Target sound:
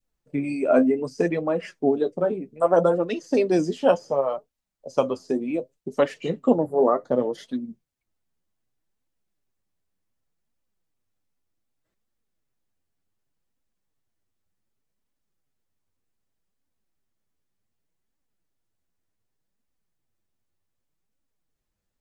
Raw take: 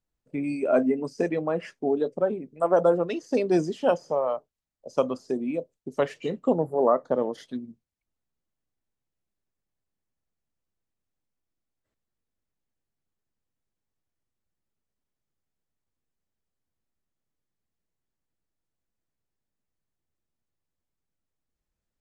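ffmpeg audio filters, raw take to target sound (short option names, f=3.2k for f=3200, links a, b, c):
-af "adynamicequalizer=threshold=0.0141:dfrequency=1000:dqfactor=0.97:tfrequency=1000:tqfactor=0.97:attack=5:release=100:ratio=0.375:range=3:mode=cutabove:tftype=bell,flanger=delay=3.2:depth=8.9:regen=36:speed=0.66:shape=triangular,volume=7.5dB"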